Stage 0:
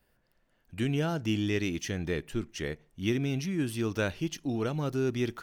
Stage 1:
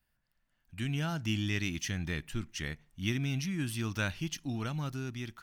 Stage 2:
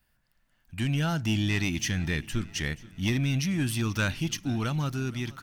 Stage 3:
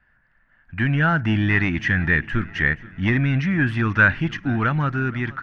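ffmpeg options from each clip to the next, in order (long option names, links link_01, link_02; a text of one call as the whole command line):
ffmpeg -i in.wav -af "equalizer=frequency=440:width_type=o:width=1.2:gain=-14.5,dynaudnorm=framelen=320:gausssize=5:maxgain=7.5dB,volume=-6.5dB" out.wav
ffmpeg -i in.wav -af "asoftclip=type=tanh:threshold=-25.5dB,aecho=1:1:475|950|1425|1900:0.0944|0.05|0.0265|0.0141,volume=7.5dB" out.wav
ffmpeg -i in.wav -af "lowpass=frequency=1700:width_type=q:width=3.7,volume=6.5dB" out.wav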